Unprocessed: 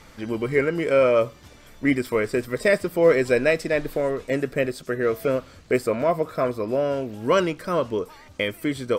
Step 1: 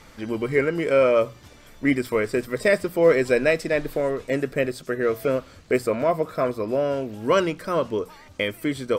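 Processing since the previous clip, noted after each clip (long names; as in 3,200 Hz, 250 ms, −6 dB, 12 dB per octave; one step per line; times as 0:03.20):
mains-hum notches 60/120/180 Hz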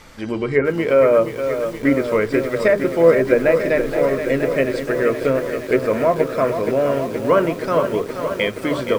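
mains-hum notches 50/100/150/200/250/300/350/400/450 Hz
treble cut that deepens with the level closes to 1,500 Hz, closed at −16 dBFS
feedback echo at a low word length 473 ms, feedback 80%, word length 7 bits, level −8.5 dB
level +4.5 dB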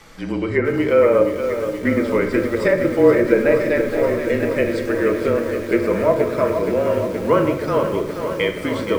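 frequency shifter −30 Hz
rectangular room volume 580 cubic metres, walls mixed, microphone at 0.65 metres
level −1.5 dB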